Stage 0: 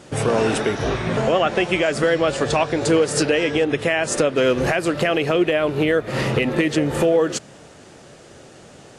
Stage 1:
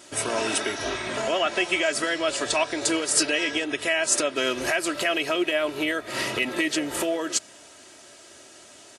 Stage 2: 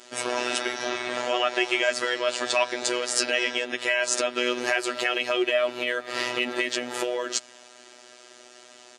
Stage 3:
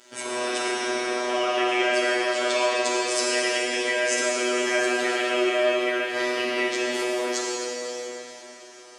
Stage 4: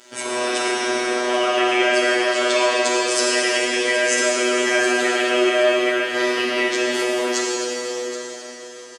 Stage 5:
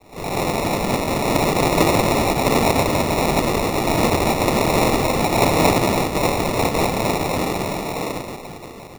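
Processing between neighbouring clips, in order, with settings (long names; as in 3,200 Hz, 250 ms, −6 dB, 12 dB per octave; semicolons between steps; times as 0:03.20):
spectral tilt +3 dB per octave; comb filter 3.1 ms, depth 60%; level −6 dB
three-way crossover with the lows and the highs turned down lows −15 dB, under 240 Hz, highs −16 dB, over 7,400 Hz; phases set to zero 123 Hz; level +2.5 dB
feedback echo with a low-pass in the loop 69 ms, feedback 77%, low-pass 950 Hz, level −17.5 dB; dense smooth reverb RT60 4.1 s, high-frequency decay 0.85×, DRR −5.5 dB; level −4.5 dB
single-tap delay 774 ms −12.5 dB; level +5 dB
cochlear-implant simulation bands 2; decimation without filtering 28×; level +1 dB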